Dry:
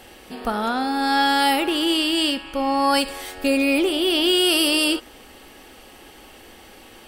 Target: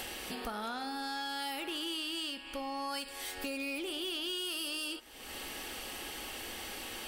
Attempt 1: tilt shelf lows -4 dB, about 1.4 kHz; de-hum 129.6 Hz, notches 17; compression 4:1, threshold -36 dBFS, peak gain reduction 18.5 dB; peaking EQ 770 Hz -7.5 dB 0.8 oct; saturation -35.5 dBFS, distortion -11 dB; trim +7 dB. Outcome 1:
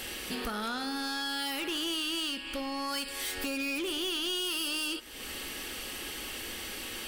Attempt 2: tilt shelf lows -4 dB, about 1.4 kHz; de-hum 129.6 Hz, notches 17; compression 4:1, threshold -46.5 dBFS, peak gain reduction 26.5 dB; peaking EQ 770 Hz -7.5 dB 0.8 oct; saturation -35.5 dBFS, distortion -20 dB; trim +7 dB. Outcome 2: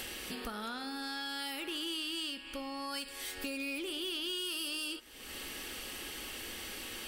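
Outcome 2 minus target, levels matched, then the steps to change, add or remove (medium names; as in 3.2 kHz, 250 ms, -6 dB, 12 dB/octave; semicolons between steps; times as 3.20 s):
1 kHz band -4.5 dB
remove: peaking EQ 770 Hz -7.5 dB 0.8 oct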